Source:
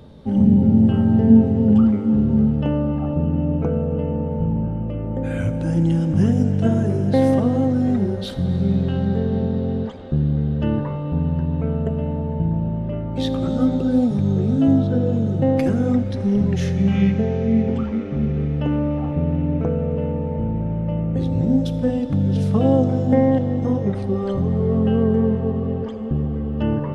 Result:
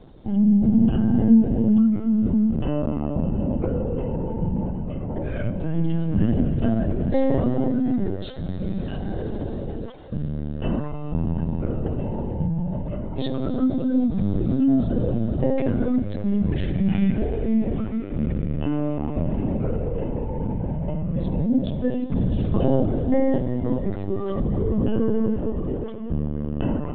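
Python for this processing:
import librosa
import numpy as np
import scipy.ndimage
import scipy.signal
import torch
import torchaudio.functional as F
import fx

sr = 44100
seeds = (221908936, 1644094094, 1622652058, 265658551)

y = fx.low_shelf(x, sr, hz=340.0, db=-6.0, at=(8.3, 10.64))
y = fx.lpc_vocoder(y, sr, seeds[0], excitation='pitch_kept', order=16)
y = y * librosa.db_to_amplitude(-3.0)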